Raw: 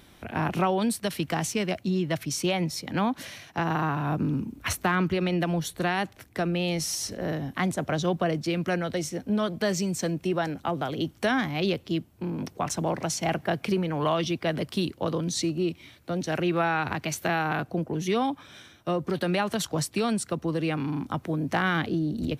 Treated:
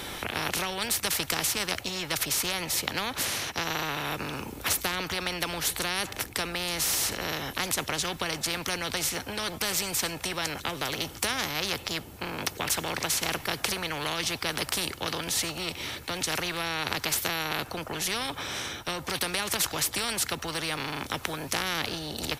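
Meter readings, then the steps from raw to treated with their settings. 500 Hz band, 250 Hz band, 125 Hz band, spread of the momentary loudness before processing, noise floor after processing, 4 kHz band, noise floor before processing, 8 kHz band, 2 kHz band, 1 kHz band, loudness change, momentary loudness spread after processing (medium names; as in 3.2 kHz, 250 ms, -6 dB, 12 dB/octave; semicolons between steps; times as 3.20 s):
-7.5 dB, -10.5 dB, -10.0 dB, 5 LU, -44 dBFS, +6.5 dB, -55 dBFS, +6.0 dB, +1.5 dB, -3.5 dB, -1.0 dB, 6 LU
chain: comb 2.3 ms, depth 31%; spectrum-flattening compressor 4:1; trim +6 dB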